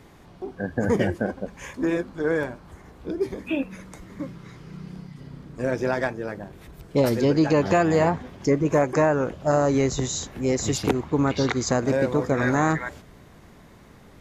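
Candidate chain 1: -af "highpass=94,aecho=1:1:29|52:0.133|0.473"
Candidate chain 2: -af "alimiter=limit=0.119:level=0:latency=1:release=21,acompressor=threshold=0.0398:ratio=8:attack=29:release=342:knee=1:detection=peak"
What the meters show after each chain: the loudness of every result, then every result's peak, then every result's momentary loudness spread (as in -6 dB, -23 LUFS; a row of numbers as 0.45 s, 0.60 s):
-23.0 LUFS, -33.0 LUFS; -5.5 dBFS, -18.5 dBFS; 21 LU, 12 LU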